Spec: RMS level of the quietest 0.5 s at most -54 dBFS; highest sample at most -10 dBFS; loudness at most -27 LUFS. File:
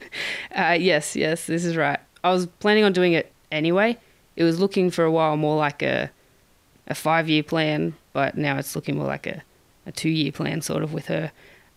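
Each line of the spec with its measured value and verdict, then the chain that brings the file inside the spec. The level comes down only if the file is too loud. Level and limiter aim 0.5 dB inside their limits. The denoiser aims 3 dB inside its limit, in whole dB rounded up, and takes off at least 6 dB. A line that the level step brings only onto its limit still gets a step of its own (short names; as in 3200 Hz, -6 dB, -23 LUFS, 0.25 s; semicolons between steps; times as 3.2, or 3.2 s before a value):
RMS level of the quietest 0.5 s -59 dBFS: OK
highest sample -6.0 dBFS: fail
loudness -22.5 LUFS: fail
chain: gain -5 dB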